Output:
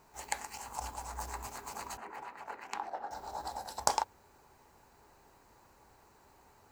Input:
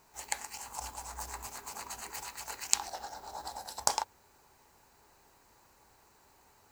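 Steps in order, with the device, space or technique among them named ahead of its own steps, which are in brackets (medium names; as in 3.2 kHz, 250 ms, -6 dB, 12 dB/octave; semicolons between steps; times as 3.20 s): behind a face mask (treble shelf 2 kHz -7.5 dB); 1.97–3.11 s: three-band isolator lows -19 dB, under 170 Hz, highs -21 dB, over 2.4 kHz; trim +3.5 dB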